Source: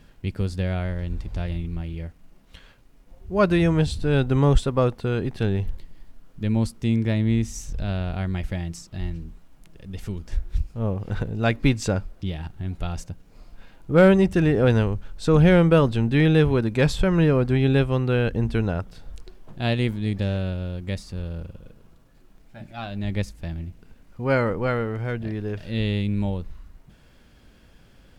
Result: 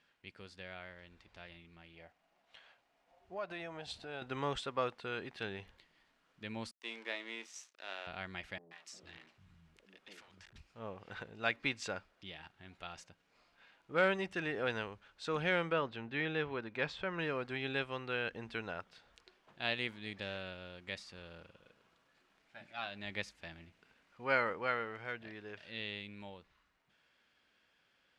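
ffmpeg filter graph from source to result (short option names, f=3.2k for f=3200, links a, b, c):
-filter_complex "[0:a]asettb=1/sr,asplit=3[a][b][c];[a]atrim=end=1.934[d];[b]atrim=start=1.93:end=4.22,asetpts=PTS-STARTPTS,afade=t=in:d=0.004:c=qsin,afade=t=out:st=2.286:d=0.004:c=qsin,equalizer=f=710:t=o:w=0.59:g=12.5,acompressor=threshold=-24dB:ratio=5:attack=3.2:release=140:knee=1:detection=peak[e];[c]atrim=start=4.216[f];[d][e]acrossfade=d=0.004:c1=hsin:c2=qsin[g];[g][f]acrossfade=d=0.004:c1=qsin:c2=hsin,asettb=1/sr,asplit=3[h][i][j];[h]atrim=end=6.714[k];[i]atrim=start=6.71:end=8.07,asetpts=PTS-STARTPTS,afade=t=in:d=0.004:c=qsin,afade=t=out:st=1.356:d=0.004:c=qsin,highpass=f=330:w=0.5412,highpass=f=330:w=1.3066,aeval=exprs='sgn(val(0))*max(abs(val(0))-0.00562,0)':c=same,asplit=2[l][m];[m]adelay=31,volume=-12dB[n];[l][n]amix=inputs=2:normalize=0,atrim=end_sample=59976[o];[j]atrim=start=8.066[p];[k][o]acrossfade=d=0.004:c1=hsin:c2=qsin[q];[q][p]acrossfade=d=0.004:c1=qsin:c2=hsin,asettb=1/sr,asplit=3[r][s][t];[r]atrim=end=8.584[u];[s]atrim=start=8.58:end=10.56,asetpts=PTS-STARTPTS,afade=t=in:d=0.004:c=qsin,afade=t=out:st=1.976:d=0.004:c=qsin,asoftclip=type=hard:threshold=-30dB,acrossover=split=190|620[v][w][x];[x]adelay=130[y];[v]adelay=450[z];[z][w][y]amix=inputs=3:normalize=0,atrim=end_sample=87318[aa];[t]atrim=start=10.556[ab];[u][aa]acrossfade=d=0.004:c1=hsin:c2=qsin[ac];[ac][ab]acrossfade=d=0.004:c1=qsin:c2=hsin,asettb=1/sr,asplit=3[ad][ae][af];[ad]atrim=end=15.724[ag];[ae]atrim=start=15.72:end=17.19,asetpts=PTS-STARTPTS,afade=t=in:d=0.004:c=qsin,afade=t=out:st=1.466:d=0.004:c=qsin,lowpass=6.7k,highshelf=f=3.5k:g=-9.5[ah];[af]atrim=start=17.186[ai];[ag][ah]acrossfade=d=0.004:c1=hsin:c2=qsin[aj];[aj][ai]acrossfade=d=0.004:c1=qsin:c2=hsin,lowpass=2.3k,dynaudnorm=f=200:g=31:m=11.5dB,aderivative,volume=2.5dB"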